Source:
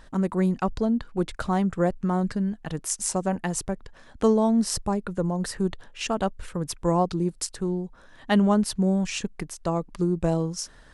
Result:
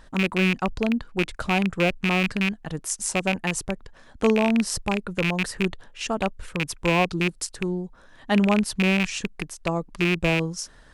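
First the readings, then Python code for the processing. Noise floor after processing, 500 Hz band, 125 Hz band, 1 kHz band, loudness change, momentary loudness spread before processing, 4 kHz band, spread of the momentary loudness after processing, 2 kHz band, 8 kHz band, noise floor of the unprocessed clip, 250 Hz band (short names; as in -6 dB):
-51 dBFS, 0.0 dB, 0.0 dB, +0.5 dB, +1.5 dB, 10 LU, +6.5 dB, 9 LU, +12.5 dB, 0.0 dB, -51 dBFS, 0.0 dB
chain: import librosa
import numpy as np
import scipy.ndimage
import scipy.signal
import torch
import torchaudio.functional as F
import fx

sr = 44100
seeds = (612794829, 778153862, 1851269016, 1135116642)

y = fx.rattle_buzz(x, sr, strikes_db=-27.0, level_db=-13.0)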